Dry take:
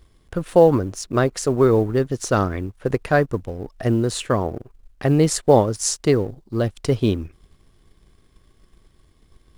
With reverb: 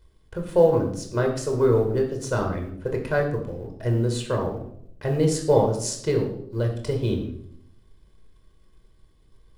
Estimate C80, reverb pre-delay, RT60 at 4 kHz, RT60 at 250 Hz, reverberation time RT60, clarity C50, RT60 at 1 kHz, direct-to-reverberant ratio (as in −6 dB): 10.5 dB, 8 ms, 0.50 s, 0.95 s, 0.70 s, 7.0 dB, 0.60 s, 2.0 dB